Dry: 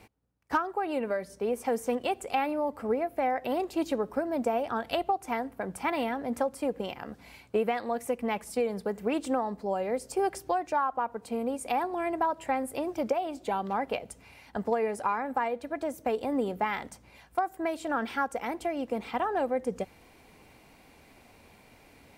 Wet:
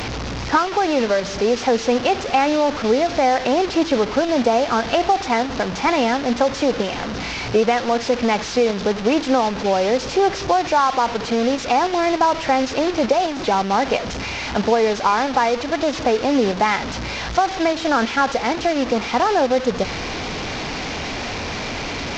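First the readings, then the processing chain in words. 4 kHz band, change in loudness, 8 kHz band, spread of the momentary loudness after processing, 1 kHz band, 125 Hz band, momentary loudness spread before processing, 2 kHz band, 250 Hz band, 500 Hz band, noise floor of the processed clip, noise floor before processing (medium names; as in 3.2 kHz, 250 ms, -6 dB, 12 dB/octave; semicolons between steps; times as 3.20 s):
+19.5 dB, +11.5 dB, +14.0 dB, 8 LU, +11.5 dB, +16.0 dB, 5 LU, +14.0 dB, +12.0 dB, +12.0 dB, -28 dBFS, -57 dBFS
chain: one-bit delta coder 32 kbps, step -32 dBFS; in parallel at -2 dB: level held to a coarse grid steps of 11 dB; on the sum: trim +8.5 dB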